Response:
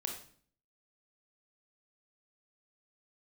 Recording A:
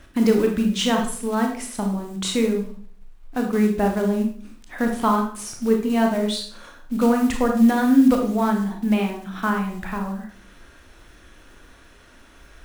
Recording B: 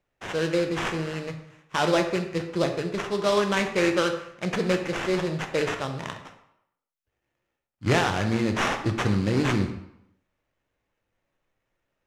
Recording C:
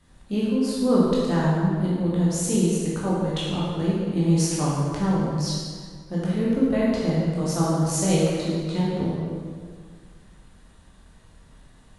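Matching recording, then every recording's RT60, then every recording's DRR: A; 0.50, 0.80, 1.9 seconds; 2.0, 4.5, −7.0 decibels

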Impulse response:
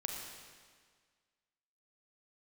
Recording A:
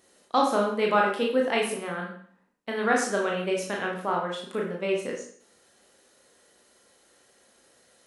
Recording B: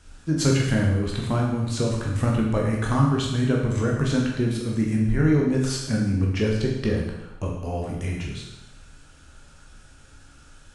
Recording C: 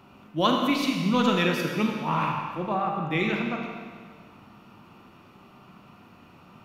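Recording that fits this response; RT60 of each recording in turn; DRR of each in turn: C; 0.55, 0.95, 1.7 seconds; −1.5, −2.0, 1.0 decibels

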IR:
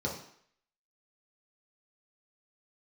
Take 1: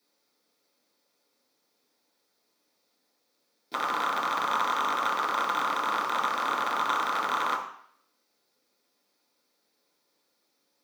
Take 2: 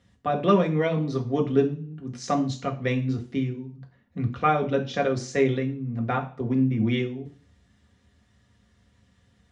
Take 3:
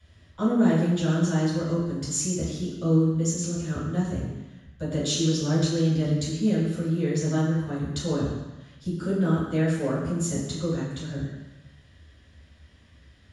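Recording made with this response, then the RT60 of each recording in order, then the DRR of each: 1; 0.60, 0.40, 1.0 seconds; −3.5, 1.0, −12.0 decibels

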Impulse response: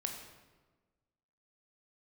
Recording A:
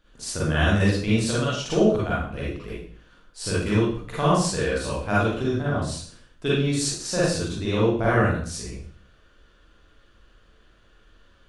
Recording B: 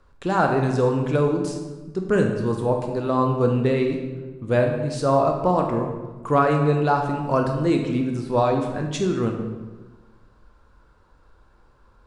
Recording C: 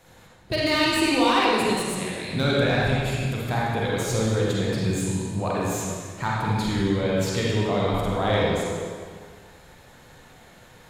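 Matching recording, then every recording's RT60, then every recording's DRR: B; 0.50, 1.3, 1.8 seconds; −8.0, 2.5, −5.5 decibels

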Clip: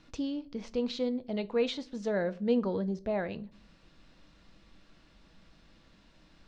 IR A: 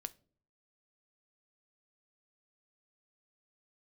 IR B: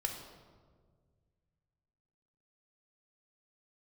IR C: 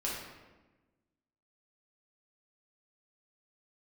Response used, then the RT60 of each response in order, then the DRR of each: A; non-exponential decay, 1.7 s, 1.2 s; 13.5, 3.0, −6.0 decibels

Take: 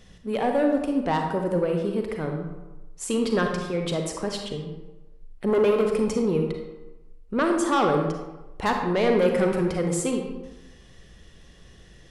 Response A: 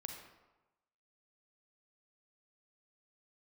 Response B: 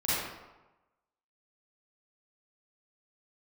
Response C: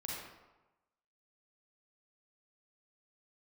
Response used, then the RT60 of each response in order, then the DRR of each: A; 1.1, 1.1, 1.1 seconds; 3.0, −11.5, −4.5 decibels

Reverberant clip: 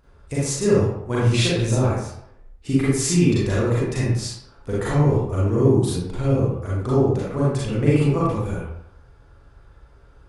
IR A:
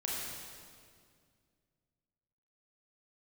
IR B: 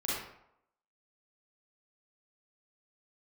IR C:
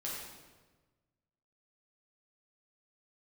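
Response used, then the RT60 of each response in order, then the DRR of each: B; 2.1, 0.75, 1.3 seconds; −5.0, −8.0, −6.5 decibels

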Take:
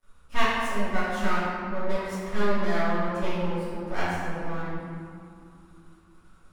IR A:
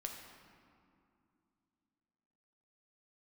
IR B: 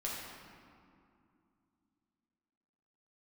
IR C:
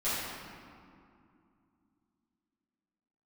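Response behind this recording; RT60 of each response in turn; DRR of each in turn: C; 2.5, 2.5, 2.5 seconds; 1.5, −5.0, −14.0 decibels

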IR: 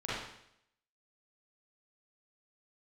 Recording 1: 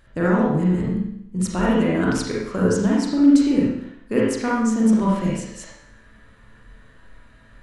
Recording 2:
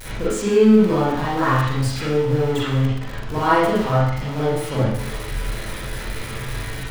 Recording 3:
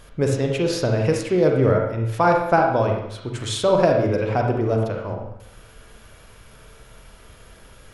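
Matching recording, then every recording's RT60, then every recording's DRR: 2; 0.75, 0.75, 0.75 seconds; −5.5, −10.0, 1.0 decibels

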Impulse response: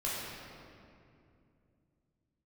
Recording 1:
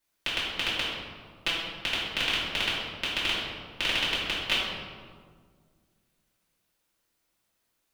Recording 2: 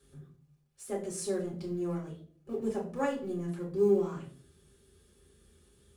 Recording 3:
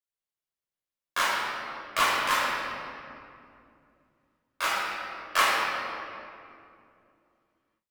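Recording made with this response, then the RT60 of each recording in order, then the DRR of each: 3; 1.8, 0.50, 2.6 seconds; −11.0, −4.0, −8.0 decibels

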